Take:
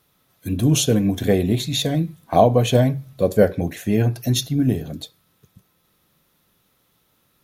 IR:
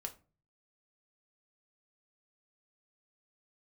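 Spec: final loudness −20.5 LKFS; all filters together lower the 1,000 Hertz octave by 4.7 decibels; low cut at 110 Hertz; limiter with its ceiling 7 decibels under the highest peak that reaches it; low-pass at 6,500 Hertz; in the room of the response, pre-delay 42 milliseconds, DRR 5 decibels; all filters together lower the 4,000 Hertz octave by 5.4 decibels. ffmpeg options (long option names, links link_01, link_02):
-filter_complex "[0:a]highpass=110,lowpass=6500,equalizer=frequency=1000:width_type=o:gain=-8,equalizer=frequency=4000:width_type=o:gain=-5.5,alimiter=limit=-11dB:level=0:latency=1,asplit=2[link_01][link_02];[1:a]atrim=start_sample=2205,adelay=42[link_03];[link_02][link_03]afir=irnorm=-1:irlink=0,volume=-2.5dB[link_04];[link_01][link_04]amix=inputs=2:normalize=0,volume=1.5dB"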